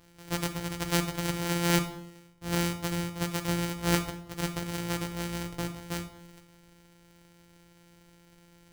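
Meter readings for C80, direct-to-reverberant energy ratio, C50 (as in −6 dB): 15.0 dB, 6.5 dB, 12.0 dB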